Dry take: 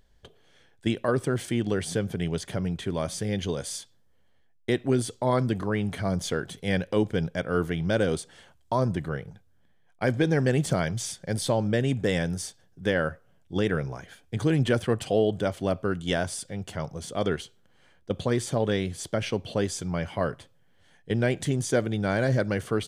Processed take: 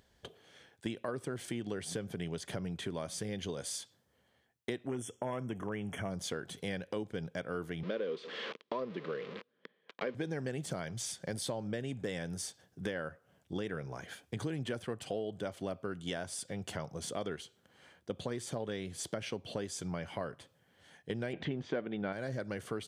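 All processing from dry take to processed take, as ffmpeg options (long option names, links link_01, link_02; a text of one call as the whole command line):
ffmpeg -i in.wav -filter_complex "[0:a]asettb=1/sr,asplit=3[link_01][link_02][link_03];[link_01]atrim=end=4.874[link_04];[link_02]atrim=start=4.87:end=6.11,asetpts=PTS-STARTPTS,afade=type=in:duration=0.004:curve=qsin,afade=type=out:start_time=1.236:duration=0.004:curve=qsin,asoftclip=type=hard:threshold=-16.5dB,asuperstop=centerf=4300:order=20:qfactor=2.3[link_05];[link_03]atrim=start=6.106[link_06];[link_04][link_05]acrossfade=duration=0.004:curve1=hsin:curve2=qsin[link_07];[link_07][link_06]acrossfade=duration=0.004:curve1=qsin:curve2=hsin,asettb=1/sr,asplit=3[link_08][link_09][link_10];[link_08]atrim=end=7.834[link_11];[link_09]atrim=start=7.83:end=10.15,asetpts=PTS-STARTPTS,afade=type=in:duration=0.004:curve=qsin,afade=type=out:start_time=2.316:duration=0.004:curve=qsin,aeval=exprs='val(0)+0.5*0.0266*sgn(val(0))':channel_layout=same,highpass=frequency=210:width=0.5412,highpass=frequency=210:width=1.3066,equalizer=frequency=290:width_type=q:width=4:gain=-5,equalizer=frequency=460:width_type=q:width=4:gain=8,equalizer=frequency=730:width_type=q:width=4:gain=-10,equalizer=frequency=1000:width_type=q:width=4:gain=4,equalizer=frequency=1500:width_type=q:width=4:gain=-4,lowpass=frequency=3900:width=0.5412,lowpass=frequency=3900:width=1.3066,bandreject=frequency=910:width=5.7[link_12];[link_10]atrim=start=10.146[link_13];[link_11][link_12]acrossfade=duration=0.004:curve1=hsin:curve2=qsin[link_14];[link_14][link_13]acrossfade=duration=0.004:curve1=qsin:curve2=hsin,asettb=1/sr,asplit=3[link_15][link_16][link_17];[link_15]atrim=end=21.334[link_18];[link_16]atrim=start=21.33:end=22.13,asetpts=PTS-STARTPTS,afade=type=in:duration=0.004:curve=qsin,afade=type=out:start_time=0.796:duration=0.004:curve=qsin,lowpass=frequency=3200:width=0.5412,lowpass=frequency=3200:width=1.3066,equalizer=frequency=110:width_type=o:width=0.3:gain=-12.5,acontrast=86[link_19];[link_17]atrim=start=22.126[link_20];[link_18][link_19]acrossfade=duration=0.004:curve1=hsin:curve2=qsin[link_21];[link_21][link_20]acrossfade=duration=0.004:curve1=qsin:curve2=hsin,highpass=54,lowshelf=frequency=100:gain=-9,acompressor=threshold=-39dB:ratio=4,volume=2dB" out.wav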